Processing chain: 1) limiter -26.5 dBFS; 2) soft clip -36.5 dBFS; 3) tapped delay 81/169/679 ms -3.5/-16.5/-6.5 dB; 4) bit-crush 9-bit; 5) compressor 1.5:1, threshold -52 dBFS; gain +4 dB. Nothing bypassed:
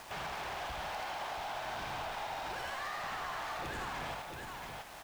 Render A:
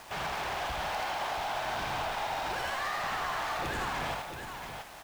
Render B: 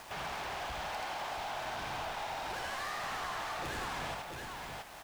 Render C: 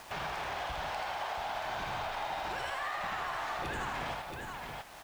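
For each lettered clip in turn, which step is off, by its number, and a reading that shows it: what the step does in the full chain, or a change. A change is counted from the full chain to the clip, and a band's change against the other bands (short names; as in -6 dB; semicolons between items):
5, mean gain reduction 5.0 dB; 1, mean gain reduction 3.5 dB; 2, distortion -11 dB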